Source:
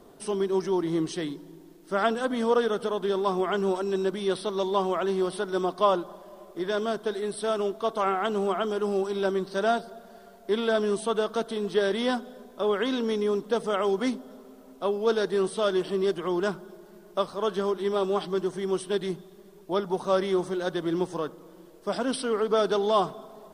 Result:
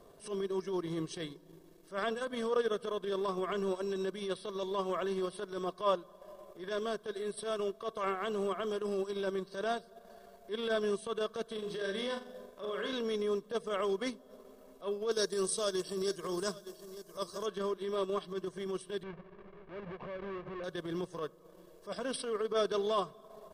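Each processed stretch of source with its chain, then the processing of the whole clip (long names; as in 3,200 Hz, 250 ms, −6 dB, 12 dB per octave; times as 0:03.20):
0:11.54–0:12.93: downward compressor 3 to 1, threshold −28 dBFS + flutter between parallel walls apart 7.1 metres, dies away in 0.48 s
0:15.11–0:17.46: high shelf with overshoot 4,000 Hz +11 dB, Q 1.5 + single-tap delay 905 ms −15.5 dB
0:19.03–0:20.64: each half-wave held at its own peak + Bessel low-pass filter 1,900 Hz, order 4 + downward compressor 16 to 1, threshold −32 dBFS
whole clip: dynamic equaliser 740 Hz, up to −5 dB, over −39 dBFS, Q 1.4; comb filter 1.8 ms, depth 51%; transient designer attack −12 dB, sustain −8 dB; level −4.5 dB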